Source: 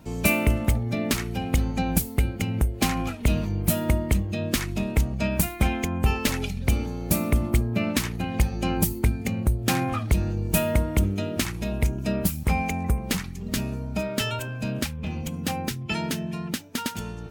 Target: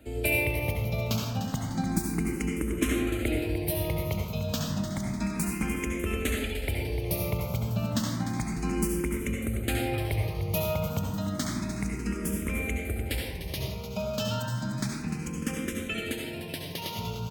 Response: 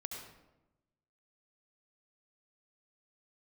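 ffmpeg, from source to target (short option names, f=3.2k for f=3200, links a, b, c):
-filter_complex "[0:a]asplit=2[a][b];[b]acompressor=threshold=-30dB:ratio=6,volume=1.5dB[c];[a][c]amix=inputs=2:normalize=0,asettb=1/sr,asplit=3[d][e][f];[d]atrim=end=1.734[g];[e]atrim=start=1.73:end=3.47,asetpts=PTS-STARTPTS,afade=t=in:d=0.004:c=qsin,afade=t=out:st=1.736:d=0.004:c=qsin,equalizer=f=320:w=3.9:g=9.5[h];[f]atrim=start=3.466[i];[g][h]acrossfade=d=0.004:c1=hsin:c2=qsin[j];[j][i]acrossfade=d=0.004:c1=qsin:c2=hsin,aecho=1:1:299|598|897|1196|1495|1794:0.299|0.161|0.0871|0.047|0.0254|0.0137[k];[1:a]atrim=start_sample=2205,afade=t=out:st=0.33:d=0.01,atrim=end_sample=14994[l];[k][l]afir=irnorm=-1:irlink=0,acrossover=split=110[m][n];[m]alimiter=limit=-23.5dB:level=0:latency=1:release=236[o];[o][n]amix=inputs=2:normalize=0,asplit=2[p][q];[q]afreqshift=0.31[r];[p][r]amix=inputs=2:normalize=1,volume=-3dB"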